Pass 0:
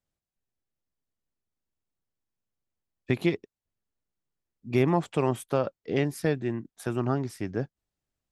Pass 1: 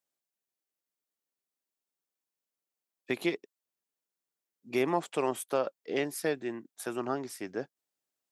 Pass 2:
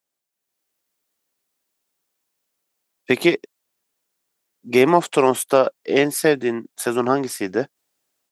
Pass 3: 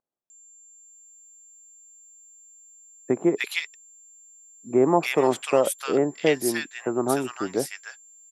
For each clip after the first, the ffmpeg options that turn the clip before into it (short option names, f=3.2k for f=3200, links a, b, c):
-af "highpass=330,highshelf=f=6.3k:g=7.5,volume=-2dB"
-af "dynaudnorm=f=330:g=3:m=8.5dB,volume=5.5dB"
-filter_complex "[0:a]aeval=exprs='val(0)+0.00562*sin(2*PI*7300*n/s)':c=same,acrossover=split=1300[a][b];[b]adelay=300[c];[a][c]amix=inputs=2:normalize=0,volume=-4dB"